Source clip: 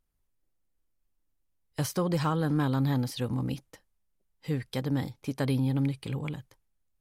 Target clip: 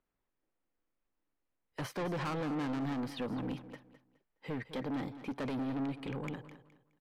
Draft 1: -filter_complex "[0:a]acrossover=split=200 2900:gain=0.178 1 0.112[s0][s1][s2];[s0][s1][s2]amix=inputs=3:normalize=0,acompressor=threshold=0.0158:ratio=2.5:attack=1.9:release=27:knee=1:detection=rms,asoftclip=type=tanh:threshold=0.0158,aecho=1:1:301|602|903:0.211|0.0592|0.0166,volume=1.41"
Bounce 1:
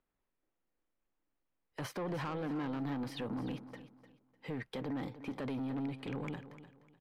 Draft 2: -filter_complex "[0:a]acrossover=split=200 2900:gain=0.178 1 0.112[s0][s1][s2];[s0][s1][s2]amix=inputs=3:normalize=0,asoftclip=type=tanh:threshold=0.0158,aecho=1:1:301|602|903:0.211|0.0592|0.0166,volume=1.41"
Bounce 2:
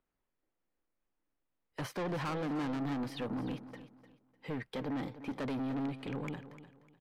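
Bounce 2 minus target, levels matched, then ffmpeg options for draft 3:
echo 92 ms late
-filter_complex "[0:a]acrossover=split=200 2900:gain=0.178 1 0.112[s0][s1][s2];[s0][s1][s2]amix=inputs=3:normalize=0,asoftclip=type=tanh:threshold=0.0158,aecho=1:1:209|418|627:0.211|0.0592|0.0166,volume=1.41"

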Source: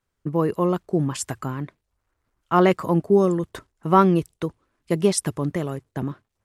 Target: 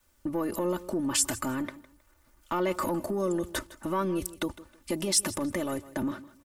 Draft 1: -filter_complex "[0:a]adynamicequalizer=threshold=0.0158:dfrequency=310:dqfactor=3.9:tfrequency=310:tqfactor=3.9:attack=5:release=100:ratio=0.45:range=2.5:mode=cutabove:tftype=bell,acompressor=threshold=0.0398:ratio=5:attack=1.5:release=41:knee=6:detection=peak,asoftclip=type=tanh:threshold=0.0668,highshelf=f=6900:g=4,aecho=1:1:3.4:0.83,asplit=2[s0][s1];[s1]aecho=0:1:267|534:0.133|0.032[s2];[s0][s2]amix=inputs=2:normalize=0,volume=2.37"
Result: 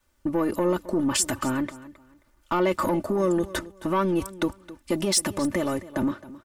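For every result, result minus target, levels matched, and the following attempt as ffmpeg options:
echo 109 ms late; compression: peak gain reduction -7 dB; 8 kHz band -3.5 dB
-filter_complex "[0:a]adynamicequalizer=threshold=0.0158:dfrequency=310:dqfactor=3.9:tfrequency=310:tqfactor=3.9:attack=5:release=100:ratio=0.45:range=2.5:mode=cutabove:tftype=bell,acompressor=threshold=0.015:ratio=5:attack=1.5:release=41:knee=6:detection=peak,asoftclip=type=tanh:threshold=0.0668,highshelf=f=6900:g=4,aecho=1:1:3.4:0.83,asplit=2[s0][s1];[s1]aecho=0:1:158|316:0.133|0.032[s2];[s0][s2]amix=inputs=2:normalize=0,volume=2.37"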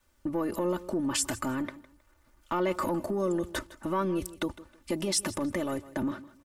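8 kHz band -3.5 dB
-filter_complex "[0:a]adynamicequalizer=threshold=0.0158:dfrequency=310:dqfactor=3.9:tfrequency=310:tqfactor=3.9:attack=5:release=100:ratio=0.45:range=2.5:mode=cutabove:tftype=bell,acompressor=threshold=0.015:ratio=5:attack=1.5:release=41:knee=6:detection=peak,asoftclip=type=tanh:threshold=0.0668,highshelf=f=6900:g=11.5,aecho=1:1:3.4:0.83,asplit=2[s0][s1];[s1]aecho=0:1:158|316:0.133|0.032[s2];[s0][s2]amix=inputs=2:normalize=0,volume=2.37"

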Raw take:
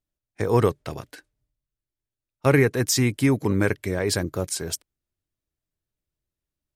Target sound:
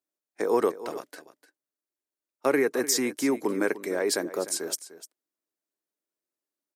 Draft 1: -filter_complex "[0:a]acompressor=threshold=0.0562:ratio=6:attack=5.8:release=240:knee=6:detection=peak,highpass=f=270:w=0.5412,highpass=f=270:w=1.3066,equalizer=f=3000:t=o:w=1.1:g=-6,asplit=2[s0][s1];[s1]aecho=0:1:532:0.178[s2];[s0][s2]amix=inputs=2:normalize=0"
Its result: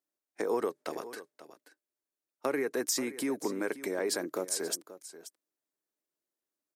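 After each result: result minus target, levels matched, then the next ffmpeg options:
echo 232 ms late; compression: peak gain reduction +8.5 dB
-filter_complex "[0:a]acompressor=threshold=0.0562:ratio=6:attack=5.8:release=240:knee=6:detection=peak,highpass=f=270:w=0.5412,highpass=f=270:w=1.3066,equalizer=f=3000:t=o:w=1.1:g=-6,asplit=2[s0][s1];[s1]aecho=0:1:300:0.178[s2];[s0][s2]amix=inputs=2:normalize=0"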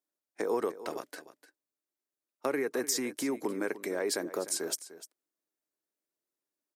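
compression: peak gain reduction +8.5 dB
-filter_complex "[0:a]acompressor=threshold=0.188:ratio=6:attack=5.8:release=240:knee=6:detection=peak,highpass=f=270:w=0.5412,highpass=f=270:w=1.3066,equalizer=f=3000:t=o:w=1.1:g=-6,asplit=2[s0][s1];[s1]aecho=0:1:300:0.178[s2];[s0][s2]amix=inputs=2:normalize=0"

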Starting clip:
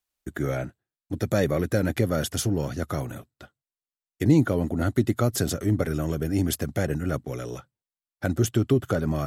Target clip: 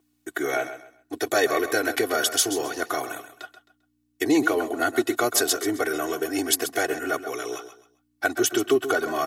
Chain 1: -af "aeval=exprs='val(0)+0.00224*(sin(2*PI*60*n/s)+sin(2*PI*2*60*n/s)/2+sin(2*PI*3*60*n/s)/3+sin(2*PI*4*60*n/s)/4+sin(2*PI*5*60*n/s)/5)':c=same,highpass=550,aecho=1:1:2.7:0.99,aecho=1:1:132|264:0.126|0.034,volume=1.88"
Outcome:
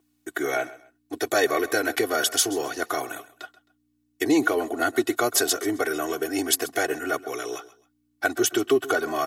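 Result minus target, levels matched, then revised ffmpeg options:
echo-to-direct -6.5 dB
-af "aeval=exprs='val(0)+0.00224*(sin(2*PI*60*n/s)+sin(2*PI*2*60*n/s)/2+sin(2*PI*3*60*n/s)/3+sin(2*PI*4*60*n/s)/4+sin(2*PI*5*60*n/s)/5)':c=same,highpass=550,aecho=1:1:2.7:0.99,aecho=1:1:132|264|396:0.266|0.0718|0.0194,volume=1.88"

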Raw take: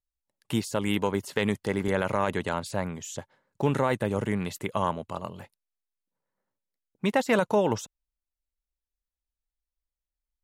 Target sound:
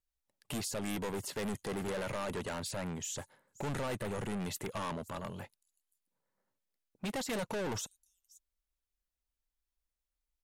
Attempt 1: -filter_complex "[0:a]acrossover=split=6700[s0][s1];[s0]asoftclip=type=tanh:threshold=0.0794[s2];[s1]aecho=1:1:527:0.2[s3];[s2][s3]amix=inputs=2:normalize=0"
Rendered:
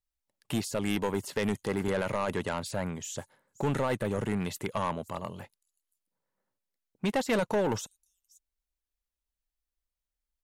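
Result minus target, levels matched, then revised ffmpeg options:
saturation: distortion -7 dB
-filter_complex "[0:a]acrossover=split=6700[s0][s1];[s0]asoftclip=type=tanh:threshold=0.02[s2];[s1]aecho=1:1:527:0.2[s3];[s2][s3]amix=inputs=2:normalize=0"

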